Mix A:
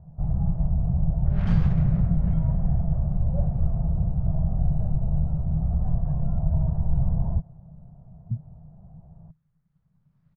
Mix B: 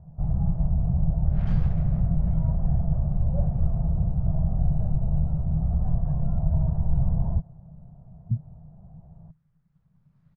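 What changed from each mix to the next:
speech +3.0 dB; second sound -6.5 dB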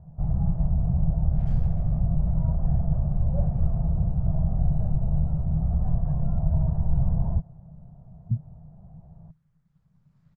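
second sound -11.5 dB; master: remove air absorption 130 m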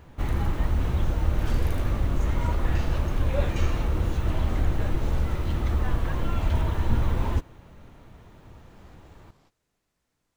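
speech: entry -1.40 s; first sound: remove synth low-pass 690 Hz, resonance Q 6.7; master: remove EQ curve 100 Hz 0 dB, 160 Hz +12 dB, 290 Hz -20 dB, 1400 Hz -13 dB, 2400 Hz -17 dB, 13000 Hz -22 dB

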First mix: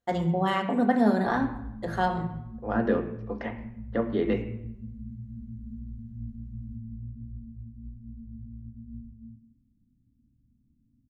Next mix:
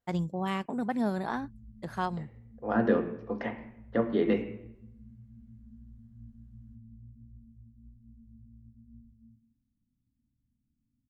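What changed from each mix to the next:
first voice: send off; background -11.5 dB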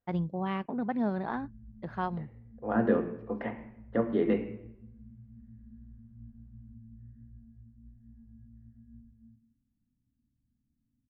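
background: remove running mean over 50 samples; master: add air absorption 310 m

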